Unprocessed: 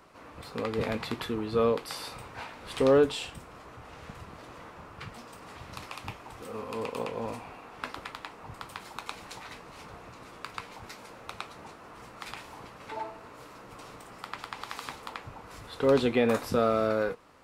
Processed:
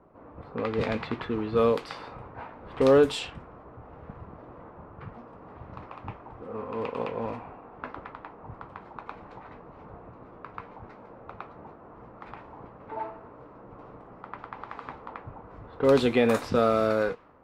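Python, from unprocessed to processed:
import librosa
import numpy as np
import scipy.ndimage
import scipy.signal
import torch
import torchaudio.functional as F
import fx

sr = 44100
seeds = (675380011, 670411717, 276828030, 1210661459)

y = fx.env_lowpass(x, sr, base_hz=720.0, full_db=-22.0)
y = y * 10.0 ** (2.5 / 20.0)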